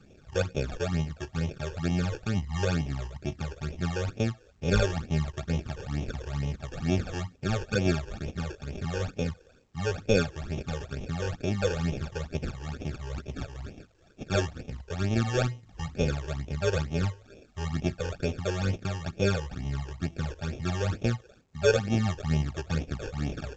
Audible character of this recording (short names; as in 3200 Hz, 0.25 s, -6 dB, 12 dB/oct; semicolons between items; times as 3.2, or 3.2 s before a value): aliases and images of a low sample rate 1000 Hz, jitter 0%; phasing stages 12, 2.2 Hz, lowest notch 210–1500 Hz; A-law